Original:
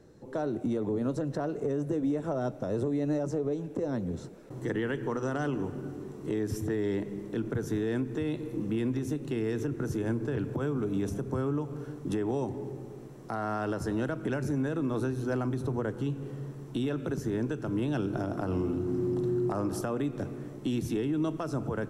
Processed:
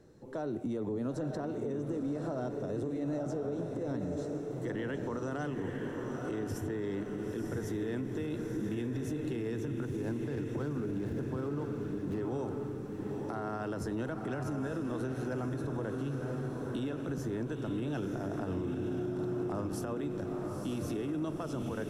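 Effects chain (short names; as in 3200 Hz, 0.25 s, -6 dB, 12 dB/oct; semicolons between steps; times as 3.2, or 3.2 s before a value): 9.85–12.21 median filter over 15 samples; diffused feedback echo 0.959 s, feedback 46%, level -5 dB; limiter -24.5 dBFS, peak gain reduction 6.5 dB; gain -3 dB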